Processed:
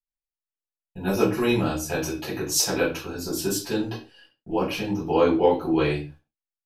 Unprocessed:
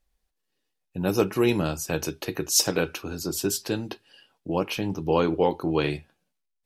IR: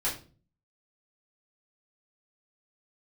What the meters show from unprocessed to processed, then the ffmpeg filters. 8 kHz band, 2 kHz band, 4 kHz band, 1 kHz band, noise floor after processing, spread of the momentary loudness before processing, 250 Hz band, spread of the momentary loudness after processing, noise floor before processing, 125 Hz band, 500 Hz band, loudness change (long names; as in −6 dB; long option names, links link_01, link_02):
−0.5 dB, +2.0 dB, −0.5 dB, +2.5 dB, below −85 dBFS, 11 LU, +2.0 dB, 10 LU, −79 dBFS, 0.0 dB, +2.0 dB, +1.5 dB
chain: -filter_complex "[0:a]agate=range=-33dB:threshold=-55dB:ratio=16:detection=peak[link_01];[1:a]atrim=start_sample=2205,afade=type=out:start_time=0.22:duration=0.01,atrim=end_sample=10143[link_02];[link_01][link_02]afir=irnorm=-1:irlink=0,volume=-5.5dB"